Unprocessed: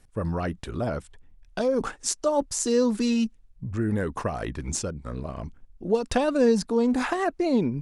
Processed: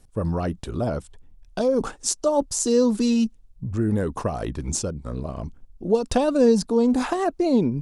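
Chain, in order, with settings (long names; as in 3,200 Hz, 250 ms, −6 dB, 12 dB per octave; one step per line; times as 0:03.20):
parametric band 1,900 Hz −8 dB 1.2 octaves
level +3.5 dB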